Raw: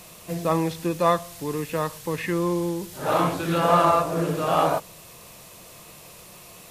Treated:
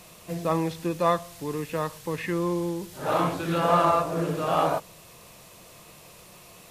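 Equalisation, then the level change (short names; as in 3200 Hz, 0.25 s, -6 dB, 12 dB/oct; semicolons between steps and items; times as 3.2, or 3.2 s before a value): high shelf 7300 Hz -4 dB; -2.5 dB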